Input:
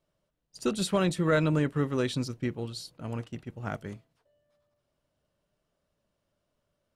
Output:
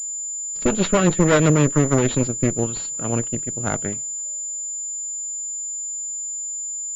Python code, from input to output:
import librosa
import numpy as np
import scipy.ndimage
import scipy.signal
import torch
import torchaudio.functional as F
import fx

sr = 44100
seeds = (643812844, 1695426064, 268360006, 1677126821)

y = scipy.signal.sosfilt(scipy.signal.butter(2, 130.0, 'highpass', fs=sr, output='sos'), x)
y = fx.cheby_harmonics(y, sr, harmonics=(4, 5, 8), levels_db=(-16, -22, -14), full_scale_db=-13.5)
y = fx.rotary_switch(y, sr, hz=8.0, then_hz=0.9, switch_at_s=1.49)
y = fx.pwm(y, sr, carrier_hz=7100.0)
y = y * 10.0 ** (8.0 / 20.0)